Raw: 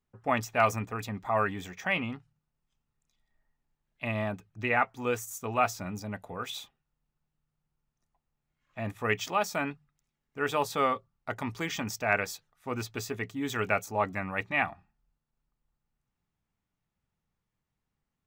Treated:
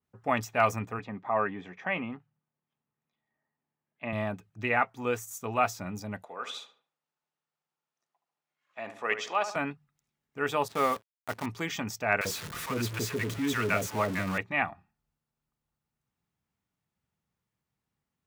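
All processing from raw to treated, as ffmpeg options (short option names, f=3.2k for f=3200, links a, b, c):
-filter_complex "[0:a]asettb=1/sr,asplit=3[a][b][c];[a]atrim=end=0.994[d];[b]atrim=start=0.99:end=4.13,asetpts=PTS-STARTPTS,afade=t=in:d=0.004:c=qsin,afade=t=out:st=3.136:d=0.004:c=qsin,highpass=160,lowpass=2.2k,bandreject=f=1.4k:w=16[e];[c]atrim=start=4.126[f];[d][e]acrossfade=d=0.004:c1=hsin:c2=qsin[g];[g][f]acrossfade=d=0.004:c1=qsin:c2=hsin,asettb=1/sr,asplit=3[h][i][j];[h]atrim=end=6.244[k];[i]atrim=start=6.24:end=9.56,asetpts=PTS-STARTPTS,afade=t=in:d=0.004:c=qsin,afade=t=out:st=3.316:d=0.004:c=qsin,highpass=450,lowpass=7k,asplit=2[l][m];[m]adelay=73,lowpass=f=1.8k:p=1,volume=-9dB,asplit=2[n][o];[o]adelay=73,lowpass=f=1.8k:p=1,volume=0.47,asplit=2[p][q];[q]adelay=73,lowpass=f=1.8k:p=1,volume=0.47,asplit=2[r][s];[s]adelay=73,lowpass=f=1.8k:p=1,volume=0.47,asplit=2[t][u];[u]adelay=73,lowpass=f=1.8k:p=1,volume=0.47[v];[l][n][p][r][t][v]amix=inputs=6:normalize=0,atrim=end_sample=146412[w];[j]atrim=start=9.556[x];[k][w]acrossfade=d=0.004:c1=hsin:c2=qsin[y];[y][x]acrossfade=d=0.004:c1=qsin:c2=hsin,asettb=1/sr,asplit=3[z][aa][ab];[z]atrim=end=10.684[ac];[aa]atrim=start=10.68:end=11.46,asetpts=PTS-STARTPTS,afade=t=in:d=0.004:c=qsin,afade=t=out:st=0.776:d=0.004:c=qsin,adynamicsmooth=sensitivity=8:basefreq=1.8k,acrusher=bits=7:dc=4:mix=0:aa=0.000001[ad];[ab]atrim=start=11.456[ae];[ac][ad]acrossfade=d=0.004:c1=hsin:c2=qsin[af];[af][ae]acrossfade=d=0.004:c1=qsin:c2=hsin,asettb=1/sr,asplit=3[ag][ah][ai];[ag]atrim=end=12.214[aj];[ah]atrim=start=12.21:end=14.38,asetpts=PTS-STARTPTS,afade=t=in:d=0.004:c=qsin,afade=t=out:st=2.166:d=0.004:c=qsin,aeval=exprs='val(0)+0.5*0.0299*sgn(val(0))':c=same,bandreject=f=790:w=7.4,acrossover=split=690[ak][al];[ak]adelay=40[am];[am][al]amix=inputs=2:normalize=0,atrim=end_sample=95697[an];[ai]atrim=start=14.376[ao];[aj][an]acrossfade=d=0.004:c1=hsin:c2=qsin[ap];[ap][ao]acrossfade=d=0.004:c1=qsin:c2=hsin,highpass=74,adynamicequalizer=threshold=0.00708:dfrequency=3000:dqfactor=0.7:tfrequency=3000:tqfactor=0.7:attack=5:release=100:ratio=0.375:range=2:mode=cutabove:tftype=highshelf"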